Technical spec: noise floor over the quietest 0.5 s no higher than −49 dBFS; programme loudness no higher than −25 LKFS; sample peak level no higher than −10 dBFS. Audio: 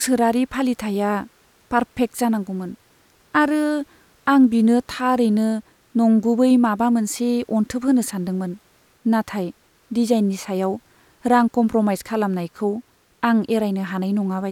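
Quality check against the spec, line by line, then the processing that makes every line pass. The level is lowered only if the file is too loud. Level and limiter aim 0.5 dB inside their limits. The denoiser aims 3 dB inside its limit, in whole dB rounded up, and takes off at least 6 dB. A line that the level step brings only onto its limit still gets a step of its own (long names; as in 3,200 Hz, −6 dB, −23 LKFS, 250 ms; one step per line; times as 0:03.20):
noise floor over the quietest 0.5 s −57 dBFS: in spec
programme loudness −20.5 LKFS: out of spec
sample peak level −5.5 dBFS: out of spec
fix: level −5 dB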